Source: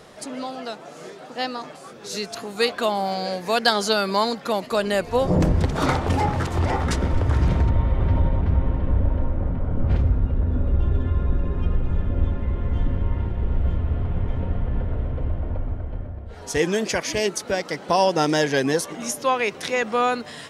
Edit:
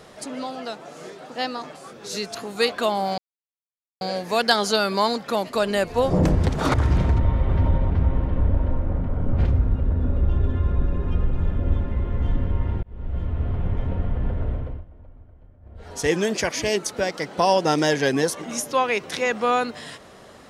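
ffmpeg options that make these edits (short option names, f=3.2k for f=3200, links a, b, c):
-filter_complex "[0:a]asplit=6[a][b][c][d][e][f];[a]atrim=end=3.18,asetpts=PTS-STARTPTS,afade=t=out:st=3.176:d=0.004:c=hsin,apad=pad_dur=0.83[g];[b]atrim=start=3.18:end=5.912,asetpts=PTS-STARTPTS,afade=t=in:d=0.004:c=hsin[h];[c]atrim=start=7.248:end=13.34,asetpts=PTS-STARTPTS,afade=t=out:st=6.088:d=0.004:c=hsin[i];[d]atrim=start=13.34:end=15.36,asetpts=PTS-STARTPTS,afade=t=in:d=0.86:c=qsin,afade=t=out:st=1.71:d=0.31:silence=0.105925[j];[e]atrim=start=15.36:end=16.11,asetpts=PTS-STARTPTS,volume=-19.5dB[k];[f]atrim=start=16.11,asetpts=PTS-STARTPTS,afade=t=in:d=0.31:silence=0.105925[l];[g][h]concat=n=2:v=0:a=1[m];[i][j][k][l]concat=n=4:v=0:a=1[n];[m][n]acrossfade=d=0.004:c1=hsin:c2=hsin"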